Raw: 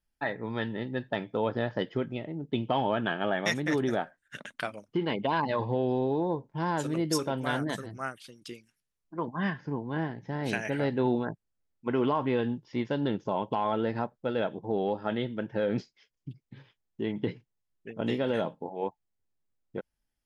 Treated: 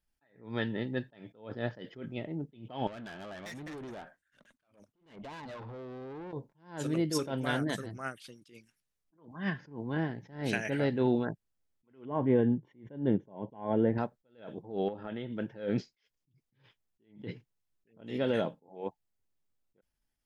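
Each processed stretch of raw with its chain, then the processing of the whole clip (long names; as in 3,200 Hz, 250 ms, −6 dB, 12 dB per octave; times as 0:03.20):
0:02.87–0:06.33: downward compressor 2.5 to 1, threshold −37 dBFS + tube saturation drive 40 dB, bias 0.25
0:12.05–0:13.98: moving average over 9 samples + spectral tilt −2.5 dB per octave + notch comb filter 1,300 Hz
0:14.88–0:15.32: low-pass filter 3,500 Hz 24 dB per octave + downward compressor 10 to 1, threshold −33 dBFS
whole clip: dynamic equaliser 960 Hz, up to −5 dB, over −46 dBFS, Q 1.9; level that may rise only so fast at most 140 dB per second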